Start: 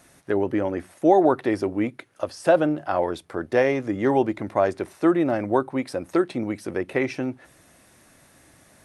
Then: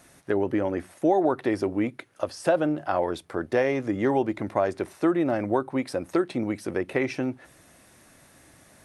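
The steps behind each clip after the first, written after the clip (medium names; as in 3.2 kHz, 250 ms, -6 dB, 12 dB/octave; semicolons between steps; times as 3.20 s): compression 2:1, threshold -21 dBFS, peak gain reduction 6 dB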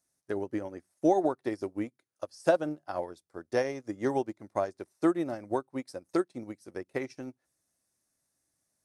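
resonant high shelf 4 kHz +9 dB, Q 1.5; upward expansion 2.5:1, over -38 dBFS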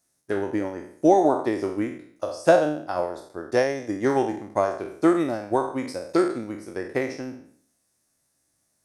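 spectral sustain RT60 0.58 s; trim +6 dB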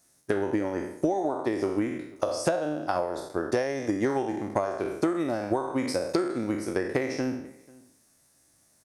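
compression 20:1, threshold -30 dBFS, peak gain reduction 20 dB; echo from a far wall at 84 m, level -24 dB; trim +7.5 dB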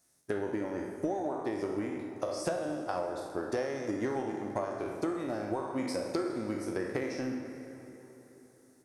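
in parallel at -11 dB: saturation -25.5 dBFS, distortion -10 dB; on the sum: plate-style reverb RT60 4 s, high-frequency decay 0.6×, DRR 6 dB; trim -8.5 dB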